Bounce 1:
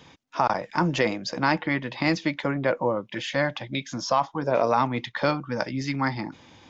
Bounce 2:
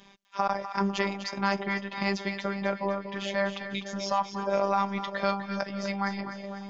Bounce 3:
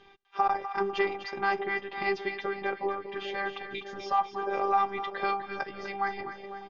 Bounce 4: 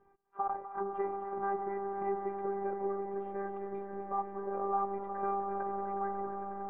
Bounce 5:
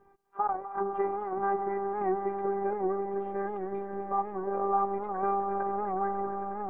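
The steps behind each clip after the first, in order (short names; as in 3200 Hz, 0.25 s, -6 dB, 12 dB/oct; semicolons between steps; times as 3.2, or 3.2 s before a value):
robotiser 198 Hz; on a send: split-band echo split 770 Hz, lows 0.602 s, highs 0.25 s, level -9.5 dB; on the sum: gain -2 dB
air absorption 250 m; comb 2.5 ms, depth 83%
LPF 1300 Hz 24 dB/oct; on a send: swelling echo 91 ms, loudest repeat 8, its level -17 dB; on the sum: gain -8 dB
record warp 78 rpm, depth 100 cents; gain +5 dB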